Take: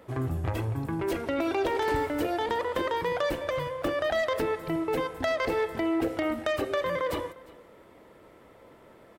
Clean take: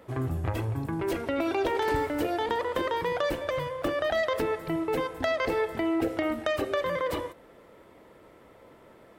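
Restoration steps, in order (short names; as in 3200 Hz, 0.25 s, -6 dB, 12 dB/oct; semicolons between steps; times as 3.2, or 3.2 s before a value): clip repair -20.5 dBFS; inverse comb 0.353 s -22 dB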